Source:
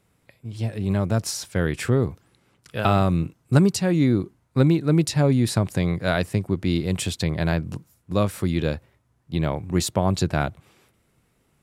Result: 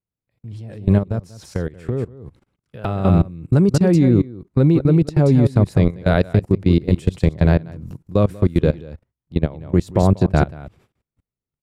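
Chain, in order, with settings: echo 0.188 s -8 dB; dynamic EQ 460 Hz, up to +5 dB, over -37 dBFS, Q 2.2; level quantiser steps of 21 dB; tilt -2 dB/oct; 0.98–3.05 compressor 2:1, threshold -30 dBFS, peak gain reduction 9.5 dB; gate -56 dBFS, range -16 dB; gain +4 dB

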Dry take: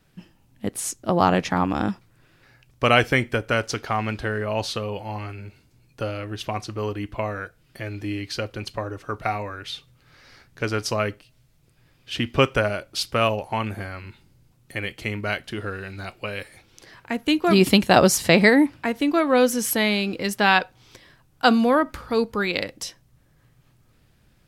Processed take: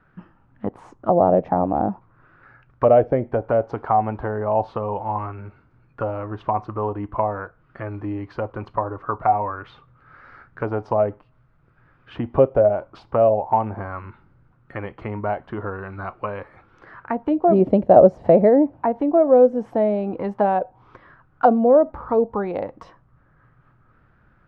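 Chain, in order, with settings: in parallel at -1.5 dB: compressor, threshold -26 dBFS, peak gain reduction 15 dB; on the sum: envelope low-pass 610–1400 Hz down, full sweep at -14 dBFS; gain -4 dB

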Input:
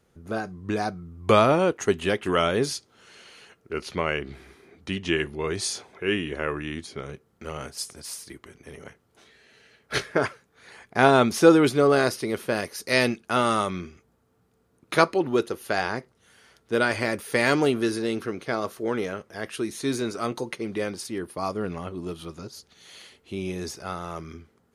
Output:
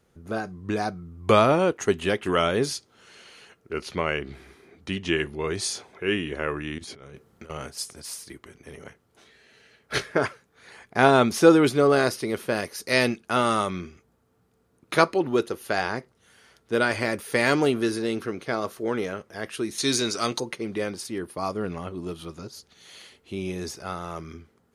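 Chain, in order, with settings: 6.78–7.5 negative-ratio compressor -44 dBFS, ratio -1; 12.43–13.22 short-mantissa float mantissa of 8-bit; 19.78–20.4 bell 5200 Hz +13 dB 2.2 oct

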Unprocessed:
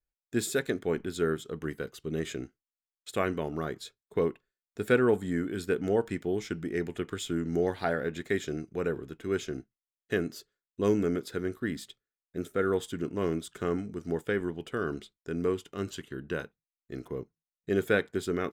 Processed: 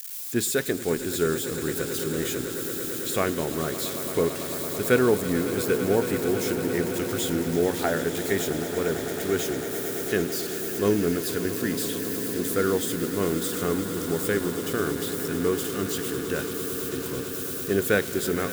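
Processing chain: switching spikes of -29.5 dBFS; on a send: swelling echo 0.111 s, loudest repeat 8, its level -14.5 dB; on the sum: gain +3.5 dB

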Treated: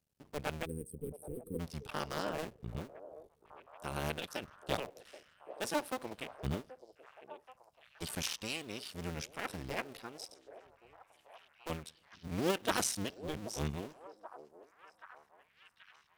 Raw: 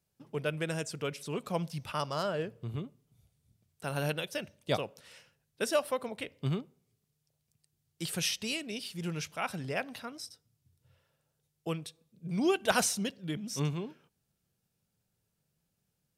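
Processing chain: cycle switcher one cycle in 2, muted; spectral gain 0.66–1.6, 520–8100 Hz -30 dB; delay with a stepping band-pass 0.78 s, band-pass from 520 Hz, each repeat 0.7 oct, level -10.5 dB; gain -2 dB

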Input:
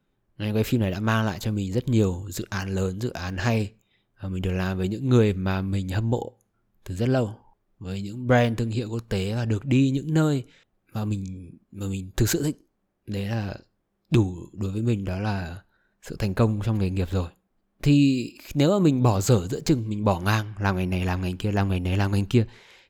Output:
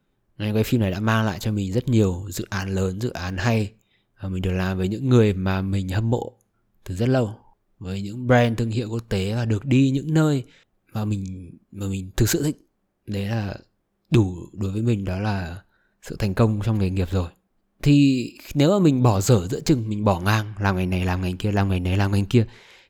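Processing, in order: gain +2.5 dB

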